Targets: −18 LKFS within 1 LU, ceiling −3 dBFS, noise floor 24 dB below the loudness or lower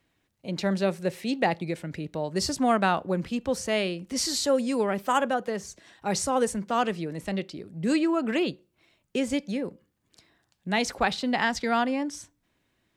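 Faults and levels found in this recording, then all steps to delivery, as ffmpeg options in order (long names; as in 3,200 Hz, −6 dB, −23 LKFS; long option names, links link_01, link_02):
integrated loudness −27.5 LKFS; sample peak −9.5 dBFS; target loudness −18.0 LKFS
→ -af "volume=9.5dB,alimiter=limit=-3dB:level=0:latency=1"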